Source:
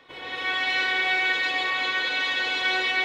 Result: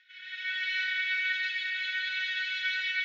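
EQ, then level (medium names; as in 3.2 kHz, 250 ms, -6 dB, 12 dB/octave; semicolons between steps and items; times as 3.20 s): brick-wall FIR high-pass 1.4 kHz; steep low-pass 7 kHz 72 dB/octave; treble shelf 4.9 kHz -8.5 dB; -4.5 dB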